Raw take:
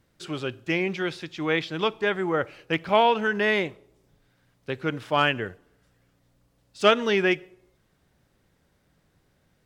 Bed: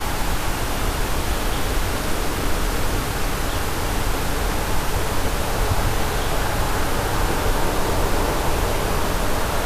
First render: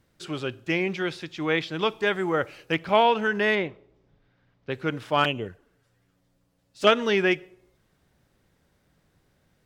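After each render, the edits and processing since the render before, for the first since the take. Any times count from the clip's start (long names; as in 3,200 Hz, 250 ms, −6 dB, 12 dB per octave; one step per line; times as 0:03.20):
0:01.88–0:02.73: high-shelf EQ 4,700 Hz +7.5 dB
0:03.55–0:04.71: high-frequency loss of the air 180 metres
0:05.24–0:06.87: flanger swept by the level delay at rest 11.5 ms, full sweep at −24 dBFS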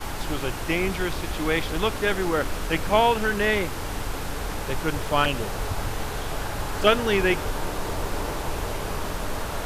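mix in bed −8 dB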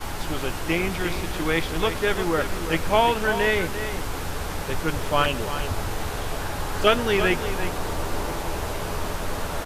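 double-tracking delay 12 ms −11 dB
single-tap delay 344 ms −10 dB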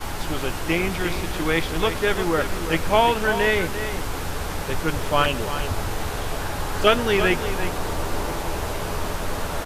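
level +1.5 dB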